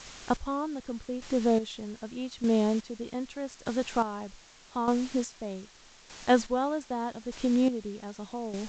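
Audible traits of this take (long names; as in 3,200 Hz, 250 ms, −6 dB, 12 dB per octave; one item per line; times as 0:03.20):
a quantiser's noise floor 8 bits, dither triangular
chopped level 0.82 Hz, depth 65%, duty 30%
G.722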